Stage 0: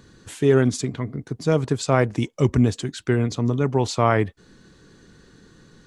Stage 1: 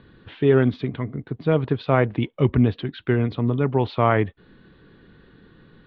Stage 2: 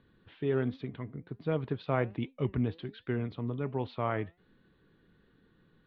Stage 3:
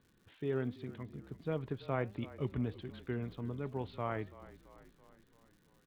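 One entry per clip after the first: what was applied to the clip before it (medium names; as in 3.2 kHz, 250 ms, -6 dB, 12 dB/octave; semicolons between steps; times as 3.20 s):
steep low-pass 3.7 kHz 48 dB/octave
flange 1.3 Hz, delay 3.6 ms, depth 3 ms, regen +89%; gain riding 2 s; trim -8 dB
crackle 190 per s -52 dBFS; frequency-shifting echo 334 ms, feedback 58%, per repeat -32 Hz, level -17.5 dB; trim -5.5 dB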